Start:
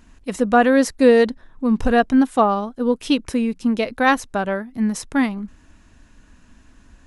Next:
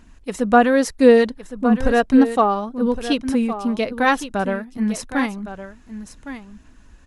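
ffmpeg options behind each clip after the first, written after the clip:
ffmpeg -i in.wav -af "aecho=1:1:1112:0.251,aphaser=in_gain=1:out_gain=1:delay=2.4:decay=0.28:speed=1.8:type=sinusoidal,volume=-1dB" out.wav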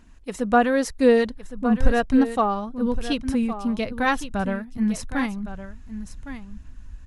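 ffmpeg -i in.wav -af "asubboost=boost=4.5:cutoff=160,volume=-4dB" out.wav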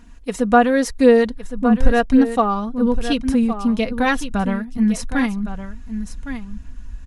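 ffmpeg -i in.wav -filter_complex "[0:a]aecho=1:1:4.2:0.42,asplit=2[link_01][link_02];[link_02]acompressor=threshold=-22dB:ratio=6,volume=-2.5dB[link_03];[link_01][link_03]amix=inputs=2:normalize=0" out.wav

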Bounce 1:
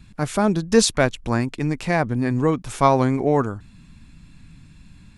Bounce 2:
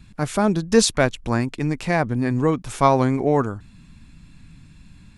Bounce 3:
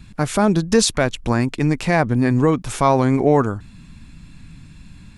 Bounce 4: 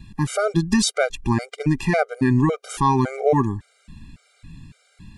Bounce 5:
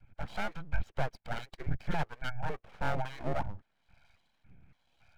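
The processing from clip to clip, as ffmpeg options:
ffmpeg -i in.wav -af anull out.wav
ffmpeg -i in.wav -af "alimiter=limit=-10dB:level=0:latency=1:release=98,volume=5dB" out.wav
ffmpeg -i in.wav -af "afftfilt=real='re*gt(sin(2*PI*1.8*pts/sr)*(1-2*mod(floor(b*sr/1024/400),2)),0)':imag='im*gt(sin(2*PI*1.8*pts/sr)*(1-2*mod(floor(b*sr/1024/400),2)),0)':win_size=1024:overlap=0.75" out.wav
ffmpeg -i in.wav -filter_complex "[0:a]highpass=frequency=180:width_type=q:width=0.5412,highpass=frequency=180:width_type=q:width=1.307,lowpass=frequency=2700:width_type=q:width=0.5176,lowpass=frequency=2700:width_type=q:width=0.7071,lowpass=frequency=2700:width_type=q:width=1.932,afreqshift=-250,acrossover=split=500[link_01][link_02];[link_01]aeval=exprs='val(0)*(1-0.7/2+0.7/2*cos(2*PI*1.1*n/s))':channel_layout=same[link_03];[link_02]aeval=exprs='val(0)*(1-0.7/2-0.7/2*cos(2*PI*1.1*n/s))':channel_layout=same[link_04];[link_03][link_04]amix=inputs=2:normalize=0,aeval=exprs='abs(val(0))':channel_layout=same,volume=-6dB" out.wav

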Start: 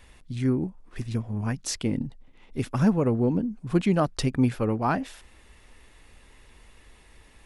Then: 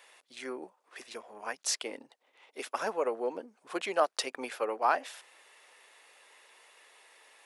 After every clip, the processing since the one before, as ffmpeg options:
ffmpeg -i in.wav -af "highpass=frequency=490:width=0.5412,highpass=frequency=490:width=1.3066" out.wav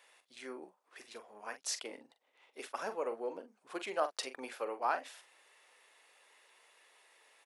ffmpeg -i in.wav -filter_complex "[0:a]asplit=2[link_01][link_02];[link_02]adelay=43,volume=-10.5dB[link_03];[link_01][link_03]amix=inputs=2:normalize=0,volume=-6.5dB" out.wav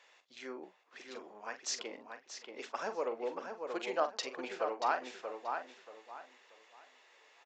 ffmpeg -i in.wav -filter_complex "[0:a]asplit=2[link_01][link_02];[link_02]adelay=632,lowpass=frequency=3500:poles=1,volume=-5.5dB,asplit=2[link_03][link_04];[link_04]adelay=632,lowpass=frequency=3500:poles=1,volume=0.28,asplit=2[link_05][link_06];[link_06]adelay=632,lowpass=frequency=3500:poles=1,volume=0.28,asplit=2[link_07][link_08];[link_08]adelay=632,lowpass=frequency=3500:poles=1,volume=0.28[link_09];[link_03][link_05][link_07][link_09]amix=inputs=4:normalize=0[link_10];[link_01][link_10]amix=inputs=2:normalize=0,aresample=16000,aresample=44100,volume=1dB" out.wav

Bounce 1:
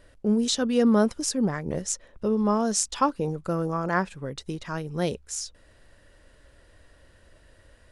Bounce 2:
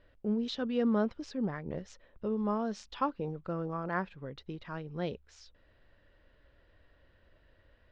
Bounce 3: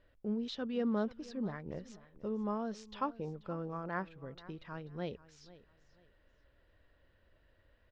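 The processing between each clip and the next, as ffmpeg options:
ffmpeg -i in.wav -af "lowpass=frequency=3900:width=0.5412,lowpass=frequency=3900:width=1.3066,volume=-8.5dB" out.wav
ffmpeg -i in.wav -af "aecho=1:1:486|972:0.119|0.0333,volume=-4.5dB" out.wav

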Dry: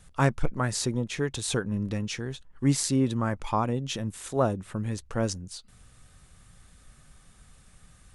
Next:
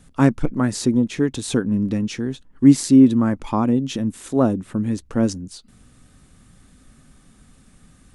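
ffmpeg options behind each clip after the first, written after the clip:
ffmpeg -i in.wav -af "equalizer=frequency=260:width=1.4:gain=13.5,volume=1.5dB" out.wav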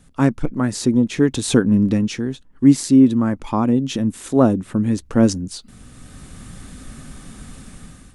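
ffmpeg -i in.wav -af "dynaudnorm=framelen=270:gausssize=5:maxgain=14.5dB,volume=-1dB" out.wav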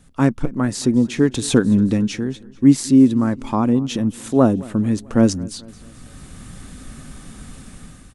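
ffmpeg -i in.wav -af "aecho=1:1:219|438|657|876:0.0794|0.0413|0.0215|0.0112" out.wav

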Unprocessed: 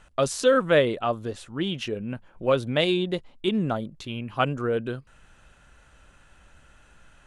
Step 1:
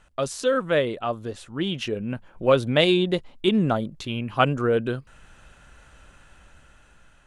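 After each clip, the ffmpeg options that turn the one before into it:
ffmpeg -i in.wav -af "dynaudnorm=framelen=450:gausssize=7:maxgain=9.5dB,volume=-3dB" out.wav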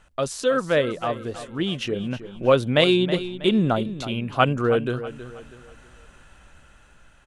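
ffmpeg -i in.wav -af "aecho=1:1:321|642|963|1284:0.224|0.0828|0.0306|0.0113,volume=1dB" out.wav

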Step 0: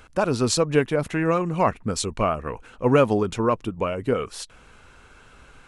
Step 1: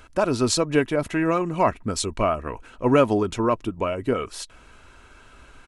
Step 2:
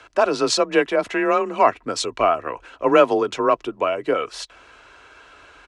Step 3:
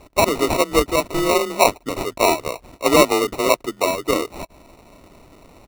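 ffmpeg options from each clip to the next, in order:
ffmpeg -i in.wav -af "aecho=1:1:3.1:0.32" out.wav
ffmpeg -i in.wav -filter_complex "[0:a]afreqshift=29,acrossover=split=330 6900:gain=0.126 1 0.126[link_01][link_02][link_03];[link_01][link_02][link_03]amix=inputs=3:normalize=0,volume=5dB" out.wav
ffmpeg -i in.wav -af "acrusher=samples=27:mix=1:aa=0.000001,volume=1dB" out.wav

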